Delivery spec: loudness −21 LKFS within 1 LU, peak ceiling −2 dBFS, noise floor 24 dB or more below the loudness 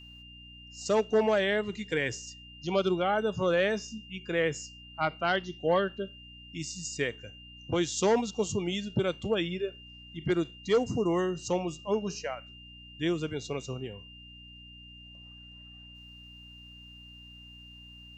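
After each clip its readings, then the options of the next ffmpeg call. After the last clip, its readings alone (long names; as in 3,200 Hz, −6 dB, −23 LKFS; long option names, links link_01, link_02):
mains hum 60 Hz; hum harmonics up to 300 Hz; level of the hum −51 dBFS; interfering tone 2,800 Hz; level of the tone −49 dBFS; integrated loudness −30.5 LKFS; sample peak −15.5 dBFS; target loudness −21.0 LKFS
→ -af "bandreject=frequency=60:width_type=h:width=4,bandreject=frequency=120:width_type=h:width=4,bandreject=frequency=180:width_type=h:width=4,bandreject=frequency=240:width_type=h:width=4,bandreject=frequency=300:width_type=h:width=4"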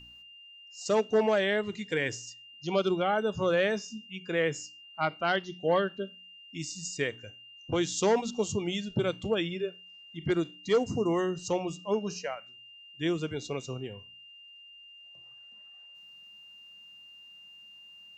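mains hum none found; interfering tone 2,800 Hz; level of the tone −49 dBFS
→ -af "bandreject=frequency=2800:width=30"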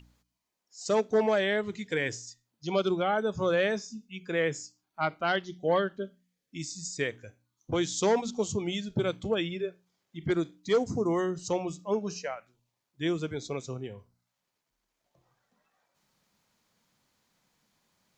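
interfering tone none found; integrated loudness −30.5 LKFS; sample peak −15.0 dBFS; target loudness −21.0 LKFS
→ -af "volume=9.5dB"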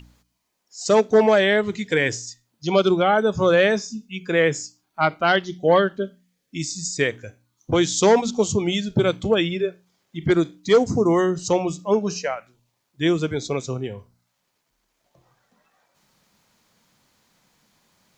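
integrated loudness −21.0 LKFS; sample peak −5.5 dBFS; background noise floor −74 dBFS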